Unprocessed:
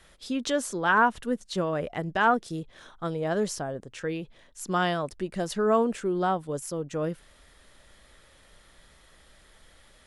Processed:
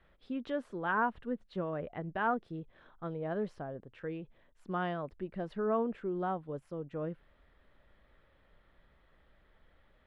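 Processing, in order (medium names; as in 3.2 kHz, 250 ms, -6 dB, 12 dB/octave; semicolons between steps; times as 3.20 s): distance through air 480 m; trim -7 dB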